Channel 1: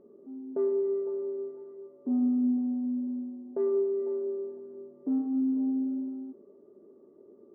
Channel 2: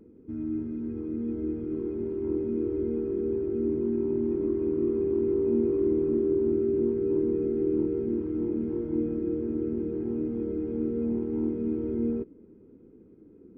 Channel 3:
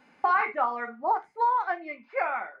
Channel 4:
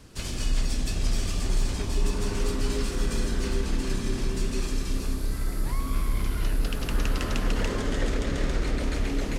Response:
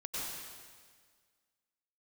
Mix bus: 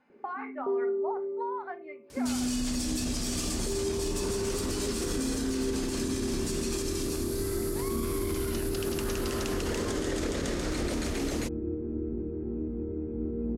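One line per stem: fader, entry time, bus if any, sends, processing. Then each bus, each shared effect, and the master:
−1.0 dB, 0.10 s, no send, no processing
−4.5 dB, 2.40 s, no send, sub-octave generator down 2 octaves, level −3 dB
−7.5 dB, 0.00 s, no send, downward compressor 4 to 1, threshold −25 dBFS, peak gain reduction 6 dB
+2.5 dB, 2.10 s, no send, high-pass filter 90 Hz 6 dB per octave; bass and treble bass −3 dB, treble +15 dB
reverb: not used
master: high-shelf EQ 2,600 Hz −9.5 dB; brickwall limiter −22 dBFS, peak gain reduction 9.5 dB

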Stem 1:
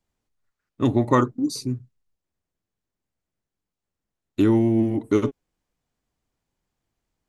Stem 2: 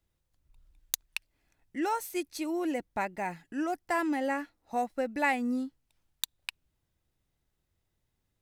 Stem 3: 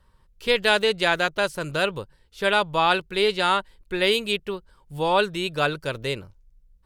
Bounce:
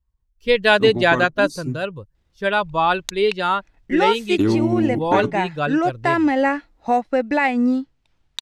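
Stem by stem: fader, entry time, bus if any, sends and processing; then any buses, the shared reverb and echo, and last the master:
−13.0 dB, 0.00 s, bus A, no send, no processing
−2.0 dB, 2.15 s, bus A, no send, low-pass filter 4,600 Hz 12 dB per octave
0:01.40 0 dB → 0:01.78 −10 dB, 0.00 s, no bus, no send, spectral dynamics exaggerated over time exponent 1.5; low-pass filter 2,100 Hz 6 dB per octave
bus A: 0.0 dB, transient designer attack +1 dB, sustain −3 dB; brickwall limiter −24 dBFS, peak gain reduction 7.5 dB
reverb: not used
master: automatic gain control gain up to 15 dB

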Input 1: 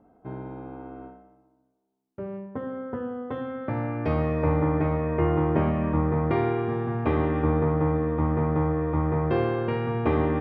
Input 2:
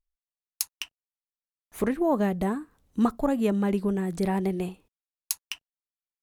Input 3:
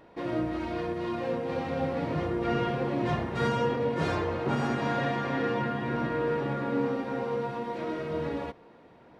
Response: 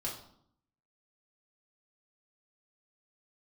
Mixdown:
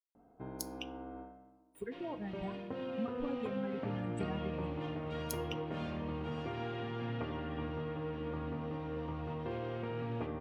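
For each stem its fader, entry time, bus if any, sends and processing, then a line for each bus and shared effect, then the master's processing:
−8.0 dB, 0.15 s, send −9 dB, downward compressor 4 to 1, threshold −33 dBFS, peak gain reduction 13 dB
−5.0 dB, 0.00 s, send −11 dB, spectral dynamics exaggerated over time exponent 3; downward compressor, threshold −35 dBFS, peak gain reduction 14 dB
−16.5 dB, 1.75 s, send −6.5 dB, parametric band 2,900 Hz +14 dB 0.77 octaves; downward compressor 2 to 1, threshold −37 dBFS, peak gain reduction 8.5 dB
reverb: on, RT60 0.65 s, pre-delay 4 ms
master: no processing

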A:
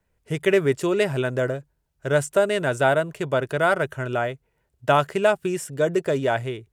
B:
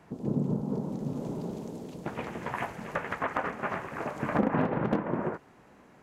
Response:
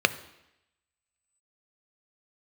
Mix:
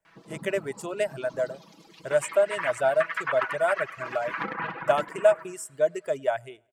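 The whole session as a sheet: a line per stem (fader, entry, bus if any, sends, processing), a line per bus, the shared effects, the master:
−6.5 dB, 0.00 s, no send, echo send −21 dB, thirty-one-band graphic EQ 630 Hz +12 dB, 4,000 Hz −9 dB, 8,000 Hz +6 dB
−5.5 dB, 0.05 s, no send, echo send −6 dB, flat-topped bell 2,400 Hz +11 dB 2.6 octaves; comb filter 6.1 ms, depth 73%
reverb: not used
echo: repeating echo 101 ms, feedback 47%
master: reverb reduction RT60 1.2 s; low-shelf EQ 490 Hz −10 dB

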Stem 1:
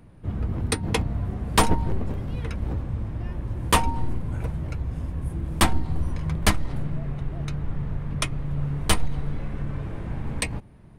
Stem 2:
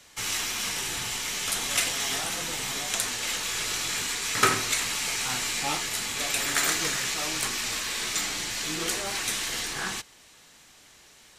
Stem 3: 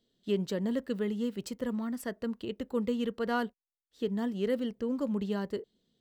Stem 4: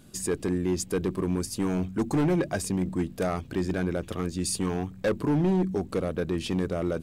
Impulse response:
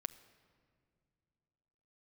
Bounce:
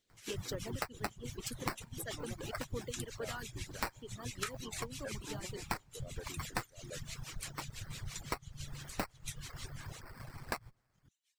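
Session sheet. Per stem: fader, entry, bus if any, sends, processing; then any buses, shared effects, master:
−11.0 dB, 0.10 s, send −18 dB, lower of the sound and its delayed copy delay 7.7 ms; octave-band graphic EQ 125/250/2,000/4,000/8,000 Hz +8/−10/+12/+11/+10 dB; sample-rate reduction 3,300 Hz, jitter 0%
−7.5 dB, 0.00 s, no send, high-pass filter 1,400 Hz; rotating-speaker cabinet horn 6 Hz; expander for the loud parts 1.5 to 1, over −45 dBFS
−4.0 dB, 0.00 s, no send, high-pass filter 270 Hz; high-shelf EQ 5,300 Hz +9 dB
−12.0 dB, 0.00 s, no send, low-pass filter 2,100 Hz; noise gate −36 dBFS, range −11 dB; parametric band 170 Hz −12.5 dB 1.8 octaves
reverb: on, pre-delay 6 ms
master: reverb reduction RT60 0.85 s; harmonic and percussive parts rebalanced harmonic −14 dB; downward compressor 16 to 1, threshold −34 dBFS, peak gain reduction 18.5 dB

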